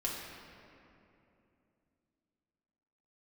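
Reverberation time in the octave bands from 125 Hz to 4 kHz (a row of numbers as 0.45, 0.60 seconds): 3.4, 3.7, 3.1, 2.6, 2.3, 1.6 seconds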